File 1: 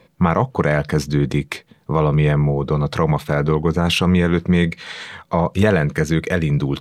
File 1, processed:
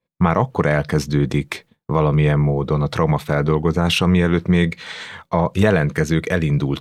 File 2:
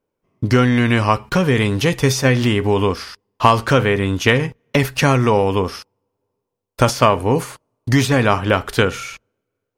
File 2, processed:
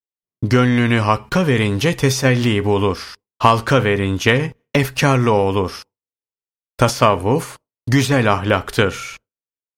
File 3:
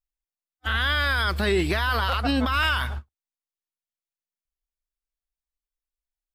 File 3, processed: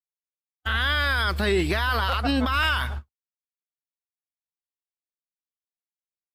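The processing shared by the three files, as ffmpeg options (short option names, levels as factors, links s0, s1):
-af "agate=range=0.0224:threshold=0.0158:ratio=3:detection=peak"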